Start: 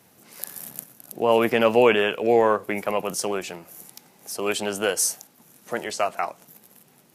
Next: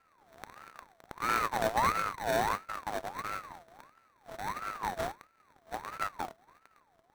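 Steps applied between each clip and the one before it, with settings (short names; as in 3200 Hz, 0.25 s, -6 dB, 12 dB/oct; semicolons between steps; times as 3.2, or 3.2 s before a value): sample-rate reducer 2000 Hz, jitter 0%; full-wave rectifier; ring modulator with a swept carrier 1000 Hz, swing 35%, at 1.5 Hz; gain -8.5 dB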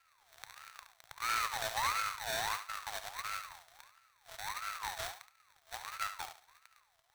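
EQ curve 120 Hz 0 dB, 190 Hz -21 dB, 800 Hz 0 dB, 3600 Hz +14 dB; soft clip -16 dBFS, distortion -13 dB; on a send: thinning echo 71 ms, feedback 27%, level -9.5 dB; on the sum: gain -8 dB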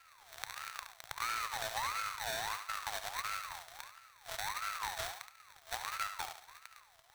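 compressor 5:1, threshold -44 dBFS, peak gain reduction 13.5 dB; gain +8.5 dB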